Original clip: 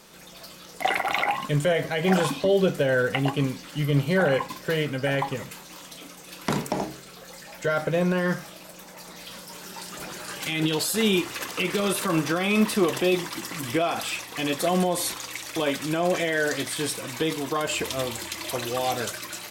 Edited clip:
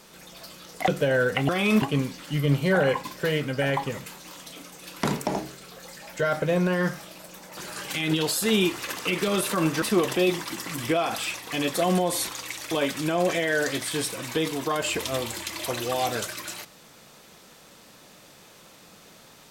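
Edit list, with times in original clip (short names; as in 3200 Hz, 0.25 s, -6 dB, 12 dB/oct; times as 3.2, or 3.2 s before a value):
0.88–2.66 cut
9.02–10.09 cut
12.34–12.67 move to 3.27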